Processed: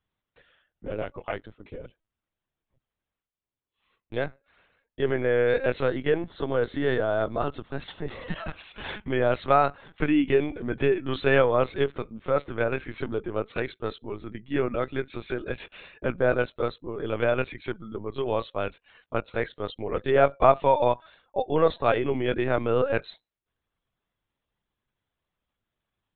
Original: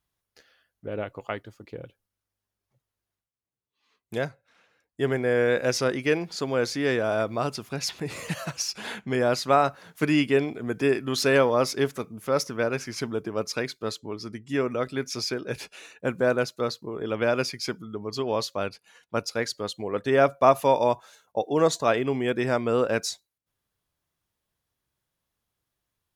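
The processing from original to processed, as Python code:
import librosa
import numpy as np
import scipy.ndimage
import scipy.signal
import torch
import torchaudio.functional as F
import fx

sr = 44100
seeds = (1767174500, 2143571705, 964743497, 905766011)

y = fx.lpc_vocoder(x, sr, seeds[0], excitation='pitch_kept', order=16)
y = fx.peak_eq(y, sr, hz=2400.0, db=-12.5, octaves=0.22, at=(5.88, 8.35))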